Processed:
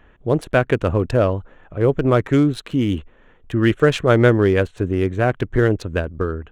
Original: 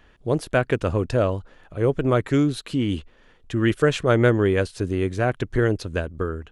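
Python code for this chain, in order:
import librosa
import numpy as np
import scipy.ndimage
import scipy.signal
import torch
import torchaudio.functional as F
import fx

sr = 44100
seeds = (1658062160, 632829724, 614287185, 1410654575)

y = fx.wiener(x, sr, points=9)
y = y * librosa.db_to_amplitude(4.0)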